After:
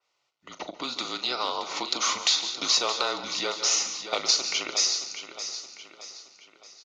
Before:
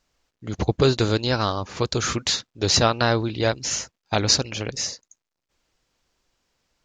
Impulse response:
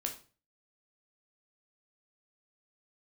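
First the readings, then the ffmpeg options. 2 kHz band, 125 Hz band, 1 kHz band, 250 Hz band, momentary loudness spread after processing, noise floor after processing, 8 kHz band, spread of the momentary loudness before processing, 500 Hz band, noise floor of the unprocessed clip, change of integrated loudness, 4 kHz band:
−4.0 dB, below −30 dB, −4.0 dB, −14.5 dB, 18 LU, −76 dBFS, 0.0 dB, 10 LU, −11.5 dB, −83 dBFS, −3.0 dB, +0.5 dB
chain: -filter_complex "[0:a]asplit=2[link_01][link_02];[link_02]adelay=39,volume=-12.5dB[link_03];[link_01][link_03]amix=inputs=2:normalize=0,asplit=2[link_04][link_05];[1:a]atrim=start_sample=2205,adelay=141[link_06];[link_05][link_06]afir=irnorm=-1:irlink=0,volume=-16dB[link_07];[link_04][link_07]amix=inputs=2:normalize=0,asoftclip=type=tanh:threshold=-6.5dB,dynaudnorm=framelen=650:gausssize=5:maxgain=11.5dB,asuperstop=centerf=1800:order=4:qfactor=5.9,acompressor=threshold=-21dB:ratio=6,aecho=1:1:622|1244|1866|2488|3110:0.299|0.143|0.0688|0.033|0.0158,afreqshift=-140,highpass=600,lowpass=5800,adynamicequalizer=threshold=0.00891:dfrequency=3700:dqfactor=0.7:tfrequency=3700:tqfactor=0.7:attack=5:release=100:ratio=0.375:range=2.5:mode=boostabove:tftype=highshelf"

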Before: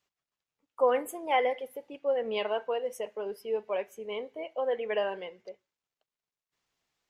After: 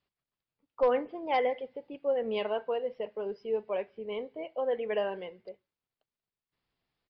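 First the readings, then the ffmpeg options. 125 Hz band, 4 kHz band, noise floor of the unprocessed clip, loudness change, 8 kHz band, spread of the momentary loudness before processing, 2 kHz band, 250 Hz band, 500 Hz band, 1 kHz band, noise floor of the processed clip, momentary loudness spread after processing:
can't be measured, −3.5 dB, below −85 dBFS, −1.0 dB, below −25 dB, 11 LU, −3.5 dB, +2.5 dB, −0.5 dB, −2.0 dB, below −85 dBFS, 11 LU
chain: -af "aresample=11025,volume=17dB,asoftclip=hard,volume=-17dB,aresample=44100,lowshelf=frequency=350:gain=9.5,volume=-3.5dB"

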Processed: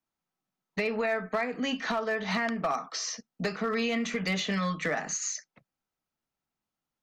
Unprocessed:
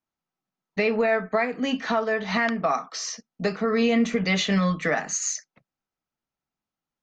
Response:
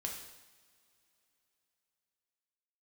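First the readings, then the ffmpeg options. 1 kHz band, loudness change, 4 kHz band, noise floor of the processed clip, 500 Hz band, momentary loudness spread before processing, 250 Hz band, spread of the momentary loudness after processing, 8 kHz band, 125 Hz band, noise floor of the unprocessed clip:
−5.0 dB, −6.0 dB, −4.0 dB, below −85 dBFS, −7.0 dB, 8 LU, −7.5 dB, 5 LU, −4.5 dB, −7.0 dB, below −85 dBFS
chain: -filter_complex "[0:a]acrossover=split=100|930|7200[link_01][link_02][link_03][link_04];[link_01]acompressor=threshold=-56dB:ratio=4[link_05];[link_02]acompressor=threshold=-30dB:ratio=4[link_06];[link_03]acompressor=threshold=-31dB:ratio=4[link_07];[link_04]acompressor=threshold=-49dB:ratio=4[link_08];[link_05][link_06][link_07][link_08]amix=inputs=4:normalize=0,asoftclip=type=hard:threshold=-21.5dB"

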